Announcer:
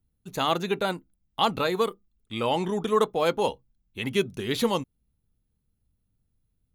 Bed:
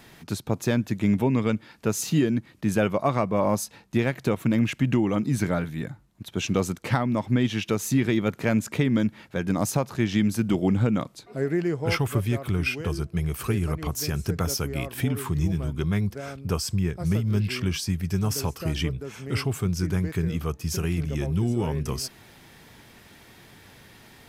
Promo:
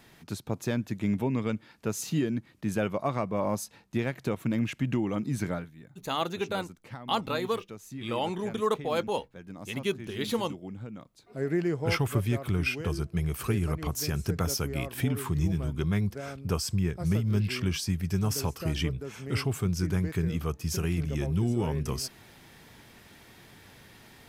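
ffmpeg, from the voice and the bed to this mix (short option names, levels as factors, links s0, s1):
-filter_complex "[0:a]adelay=5700,volume=0.562[s0];[1:a]volume=3.16,afade=t=out:st=5.51:d=0.2:silence=0.237137,afade=t=in:st=11.13:d=0.4:silence=0.158489[s1];[s0][s1]amix=inputs=2:normalize=0"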